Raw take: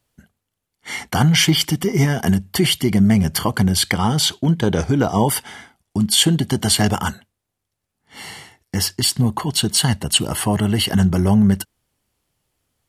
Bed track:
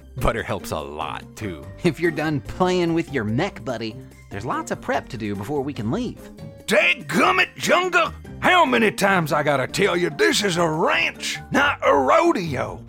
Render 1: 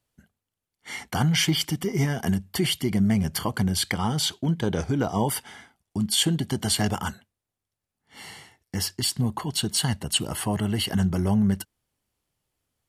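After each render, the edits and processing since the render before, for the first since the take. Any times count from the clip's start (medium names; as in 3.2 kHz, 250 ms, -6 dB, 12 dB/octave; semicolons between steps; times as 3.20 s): trim -7.5 dB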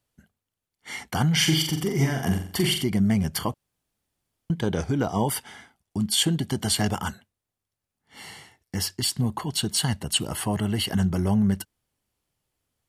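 1.32–2.84 s: flutter echo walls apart 7.6 m, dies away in 0.49 s; 3.54–4.50 s: room tone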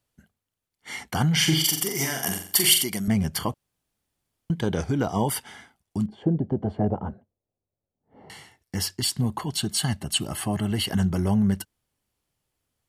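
1.64–3.08 s: RIAA curve recording; 6.06–8.30 s: resonant low-pass 570 Hz, resonance Q 1.8; 9.56–10.71 s: comb of notches 480 Hz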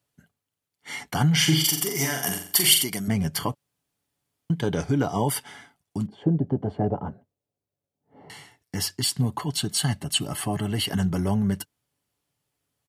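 high-pass 70 Hz; comb 7 ms, depth 34%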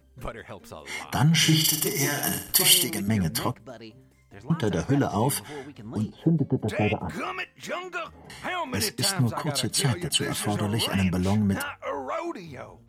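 add bed track -15 dB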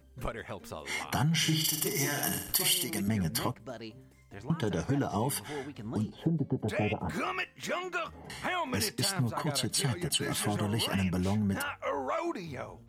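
compression 2.5:1, threshold -29 dBFS, peak gain reduction 11 dB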